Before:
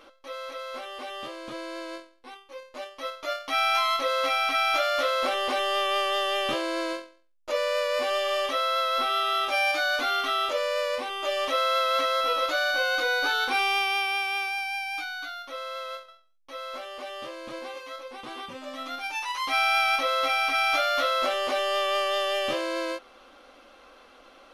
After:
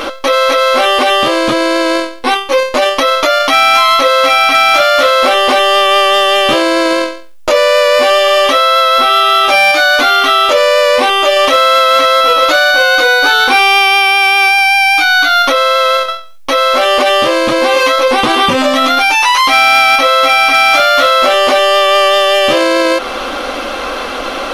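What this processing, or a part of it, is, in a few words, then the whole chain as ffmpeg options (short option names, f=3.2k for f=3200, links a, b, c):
loud club master: -af "acompressor=threshold=-34dB:ratio=1.5,asoftclip=type=hard:threshold=-23dB,alimiter=level_in=34.5dB:limit=-1dB:release=50:level=0:latency=1,volume=-1dB"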